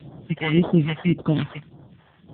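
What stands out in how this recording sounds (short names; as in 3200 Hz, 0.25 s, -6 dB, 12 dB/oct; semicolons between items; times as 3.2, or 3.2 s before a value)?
aliases and images of a low sample rate 2500 Hz, jitter 0%; random-step tremolo; phasing stages 2, 1.8 Hz, lowest notch 260–2300 Hz; AMR-NB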